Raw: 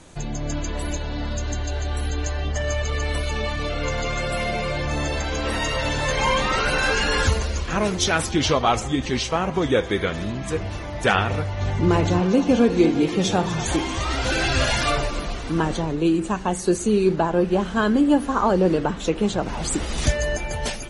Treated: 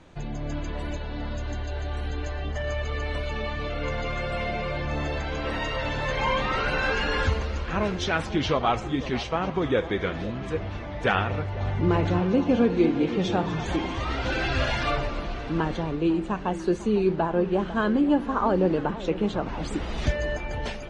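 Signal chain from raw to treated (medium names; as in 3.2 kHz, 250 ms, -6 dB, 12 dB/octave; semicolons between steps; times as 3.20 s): low-pass 3.4 kHz 12 dB/octave; on a send: echo whose repeats swap between lows and highs 499 ms, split 1 kHz, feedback 62%, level -14 dB; on the sum: trim -4 dB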